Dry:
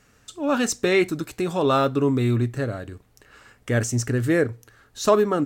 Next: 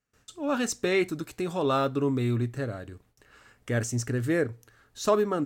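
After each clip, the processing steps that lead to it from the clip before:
noise gate with hold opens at −47 dBFS
level −5.5 dB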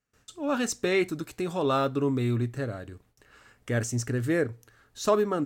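no processing that can be heard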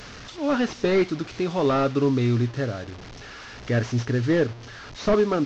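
linear delta modulator 32 kbit/s, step −39.5 dBFS
level +5 dB

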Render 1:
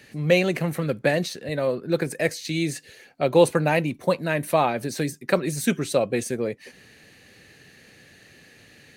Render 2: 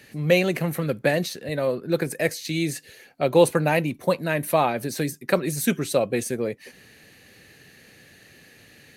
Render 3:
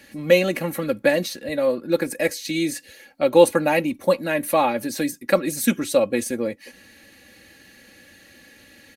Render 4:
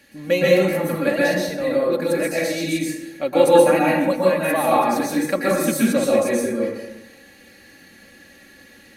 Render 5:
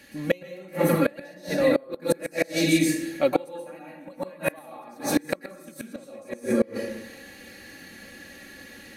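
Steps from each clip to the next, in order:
parametric band 12,000 Hz +8.5 dB 0.33 octaves
comb filter 3.6 ms, depth 73%
dense smooth reverb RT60 1 s, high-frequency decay 0.5×, pre-delay 110 ms, DRR −6 dB; level −4.5 dB
gate with flip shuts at −11 dBFS, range −28 dB; level +2.5 dB

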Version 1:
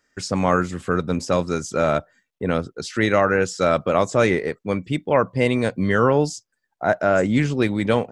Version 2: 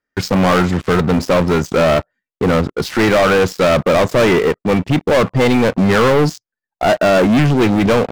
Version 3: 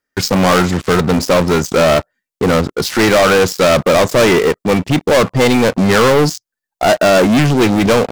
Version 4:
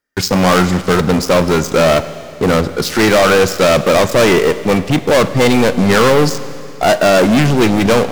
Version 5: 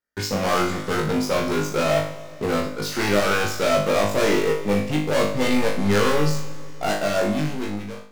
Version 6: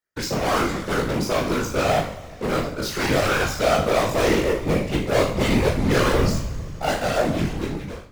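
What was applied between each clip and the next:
Bessel low-pass filter 2,800 Hz, order 2; leveller curve on the samples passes 5; in parallel at −3 dB: brickwall limiter −12 dBFS, peak gain reduction 7.5 dB; on the sum: level −6 dB
bass and treble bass −2 dB, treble +7 dB; level +2 dB
four-comb reverb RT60 2.6 s, combs from 33 ms, DRR 13 dB
fade-out on the ending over 1.25 s; tuned comb filter 51 Hz, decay 0.45 s, harmonics all, mix 100%; level −1 dB
random phases in short frames

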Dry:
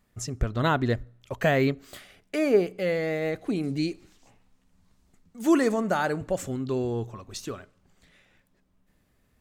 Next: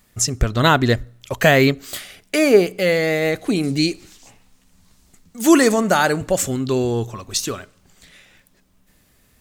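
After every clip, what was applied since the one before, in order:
high-shelf EQ 2,700 Hz +10.5 dB
level +8 dB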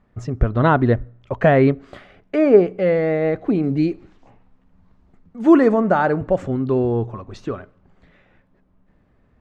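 low-pass filter 1,200 Hz 12 dB per octave
level +1 dB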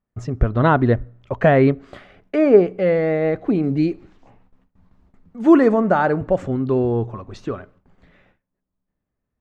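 noise gate with hold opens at −45 dBFS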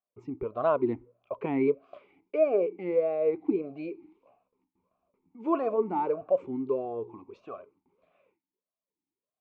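formant filter swept between two vowels a-u 1.6 Hz

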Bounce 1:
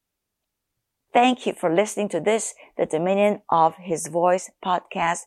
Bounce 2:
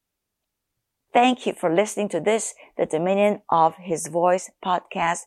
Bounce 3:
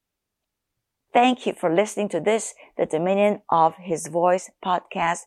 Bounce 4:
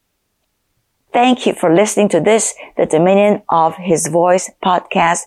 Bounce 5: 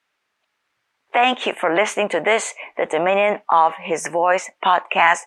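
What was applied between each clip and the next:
no processing that can be heard
high-shelf EQ 7,000 Hz −4.5 dB
boost into a limiter +15.5 dB; level −1 dB
resonant band-pass 1,700 Hz, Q 1.1; level +3 dB

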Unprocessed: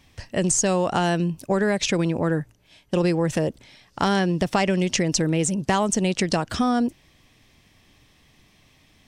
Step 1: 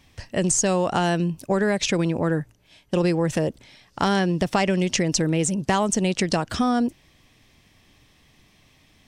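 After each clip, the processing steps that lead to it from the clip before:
no processing that can be heard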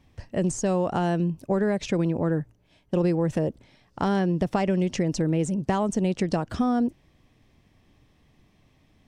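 tilt shelving filter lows +6 dB, about 1,400 Hz
level −7 dB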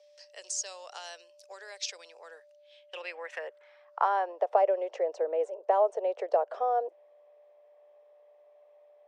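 band-pass filter sweep 5,100 Hz → 610 Hz, 0:02.30–0:04.61
steady tone 590 Hz −63 dBFS
Butterworth high-pass 440 Hz 48 dB per octave
level +6.5 dB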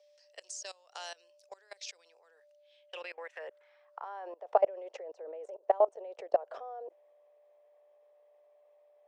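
output level in coarse steps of 22 dB
level +1.5 dB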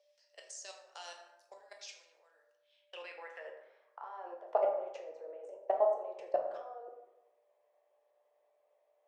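dense smooth reverb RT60 0.95 s, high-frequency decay 0.5×, DRR 1 dB
level −6 dB

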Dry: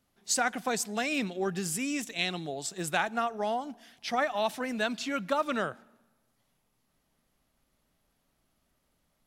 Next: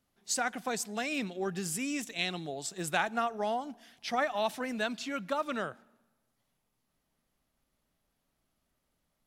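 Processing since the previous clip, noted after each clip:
speech leveller 2 s
level −3 dB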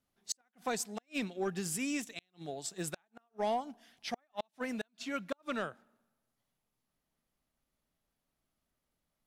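gate with flip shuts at −21 dBFS, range −39 dB
sine wavefolder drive 5 dB, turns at −16 dBFS
expander for the loud parts 1.5 to 1, over −35 dBFS
level −8 dB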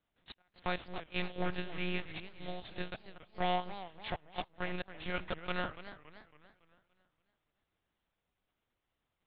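compressing power law on the bin magnitudes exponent 0.63
one-pitch LPC vocoder at 8 kHz 180 Hz
feedback echo with a swinging delay time 282 ms, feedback 46%, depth 205 cents, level −13.5 dB
level +1 dB

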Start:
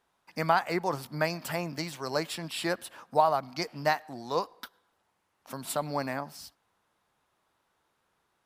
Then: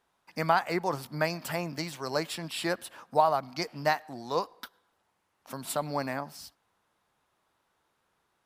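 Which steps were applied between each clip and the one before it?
no processing that can be heard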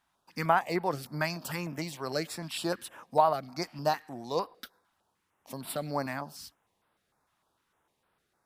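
notch on a step sequencer 6.6 Hz 450–6,500 Hz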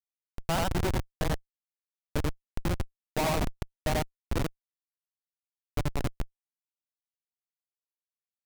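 loudspeakers that aren't time-aligned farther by 30 metres −1 dB, 78 metres −12 dB
comparator with hysteresis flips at −23.5 dBFS
level +5 dB

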